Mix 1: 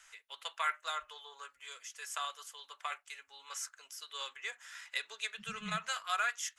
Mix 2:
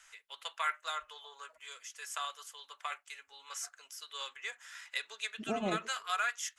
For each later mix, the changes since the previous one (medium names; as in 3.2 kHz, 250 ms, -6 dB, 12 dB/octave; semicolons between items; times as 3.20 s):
second voice: remove brick-wall FIR band-stop 200–1200 Hz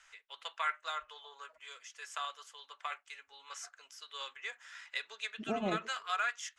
master: add distance through air 75 m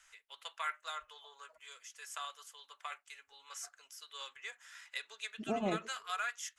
first voice -4.5 dB; master: remove distance through air 75 m